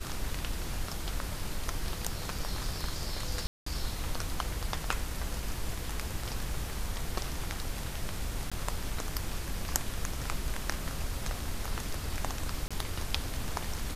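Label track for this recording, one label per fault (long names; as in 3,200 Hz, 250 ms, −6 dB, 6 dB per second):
3.470000	3.660000	drop-out 194 ms
8.500000	8.520000	drop-out 16 ms
12.680000	12.710000	drop-out 26 ms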